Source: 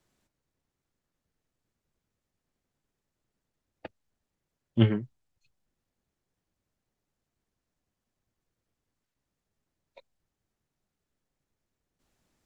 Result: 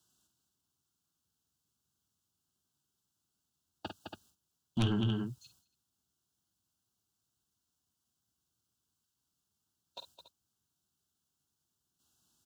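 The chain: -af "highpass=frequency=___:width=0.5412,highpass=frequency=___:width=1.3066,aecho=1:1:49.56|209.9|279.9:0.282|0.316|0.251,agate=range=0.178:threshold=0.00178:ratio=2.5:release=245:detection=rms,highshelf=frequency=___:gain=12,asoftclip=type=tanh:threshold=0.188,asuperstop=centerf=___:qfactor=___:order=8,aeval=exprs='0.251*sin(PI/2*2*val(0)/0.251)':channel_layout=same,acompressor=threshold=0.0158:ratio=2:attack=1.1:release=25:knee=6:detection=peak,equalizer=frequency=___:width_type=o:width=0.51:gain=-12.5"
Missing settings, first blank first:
62, 62, 2.5k, 2100, 1.8, 530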